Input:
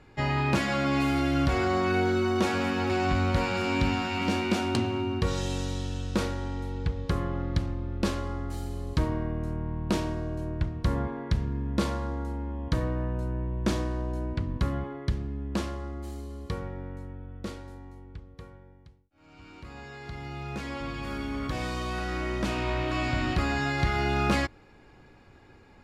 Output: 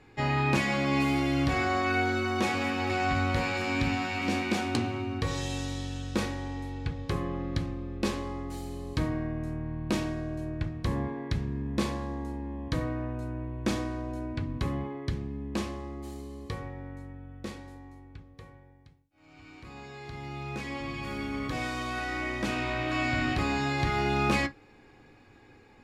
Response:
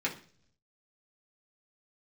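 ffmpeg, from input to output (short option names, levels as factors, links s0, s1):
-filter_complex "[0:a]bandreject=f=1400:w=26,asplit=2[s0][s1];[1:a]atrim=start_sample=2205,atrim=end_sample=3087[s2];[s1][s2]afir=irnorm=-1:irlink=0,volume=0.355[s3];[s0][s3]amix=inputs=2:normalize=0,volume=0.708"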